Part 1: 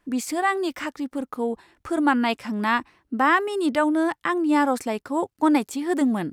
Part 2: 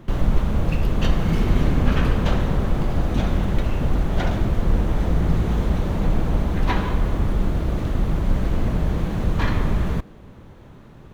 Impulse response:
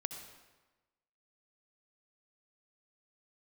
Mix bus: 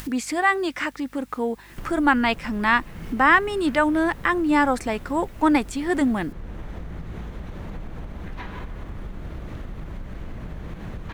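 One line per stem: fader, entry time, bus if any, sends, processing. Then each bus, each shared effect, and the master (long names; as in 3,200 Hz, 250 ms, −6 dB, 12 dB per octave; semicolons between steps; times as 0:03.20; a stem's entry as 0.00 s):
0.0 dB, 0.00 s, no send, low-pass filter 10,000 Hz; mains hum 50 Hz, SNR 32 dB; bit-depth reduction 10 bits, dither triangular
−14.5 dB, 1.70 s, no send, downward compressor, threshold −20 dBFS, peak gain reduction 10.5 dB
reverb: not used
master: upward compression, threshold −26 dBFS; parametric band 1,900 Hz +5.5 dB 1.2 octaves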